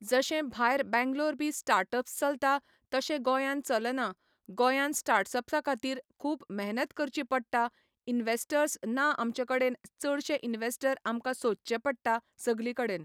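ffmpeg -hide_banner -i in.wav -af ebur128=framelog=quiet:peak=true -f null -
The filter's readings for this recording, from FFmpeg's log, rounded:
Integrated loudness:
  I:         -31.0 LUFS
  Threshold: -41.1 LUFS
Loudness range:
  LRA:         2.5 LU
  Threshold: -51.2 LUFS
  LRA low:   -32.6 LUFS
  LRA high:  -30.1 LUFS
True peak:
  Peak:      -12.6 dBFS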